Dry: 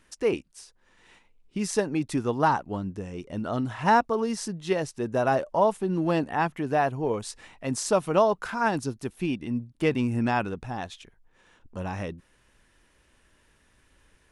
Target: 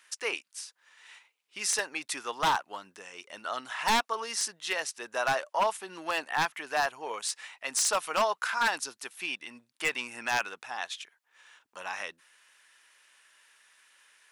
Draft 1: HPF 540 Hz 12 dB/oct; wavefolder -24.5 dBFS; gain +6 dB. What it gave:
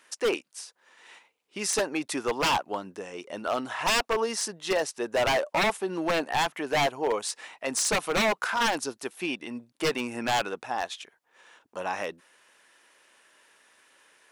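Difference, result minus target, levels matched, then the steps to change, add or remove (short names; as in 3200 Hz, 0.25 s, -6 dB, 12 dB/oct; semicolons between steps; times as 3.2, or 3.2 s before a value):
500 Hz band +5.0 dB
change: HPF 1300 Hz 12 dB/oct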